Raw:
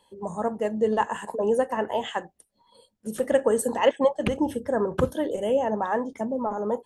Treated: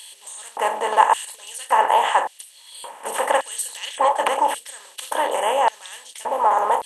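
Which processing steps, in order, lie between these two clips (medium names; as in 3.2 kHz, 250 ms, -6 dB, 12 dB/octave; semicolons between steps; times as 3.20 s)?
spectral levelling over time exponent 0.4; LFO high-pass square 0.88 Hz 930–4100 Hz; trim +1.5 dB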